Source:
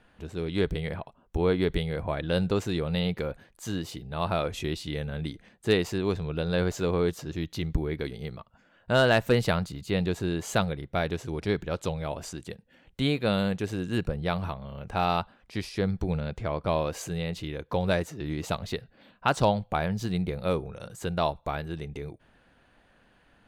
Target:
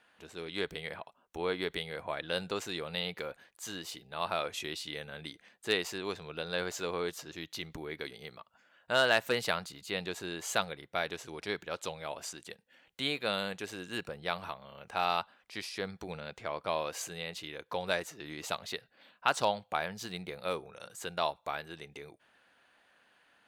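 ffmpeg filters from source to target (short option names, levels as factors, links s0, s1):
-af "highpass=f=1100:p=1"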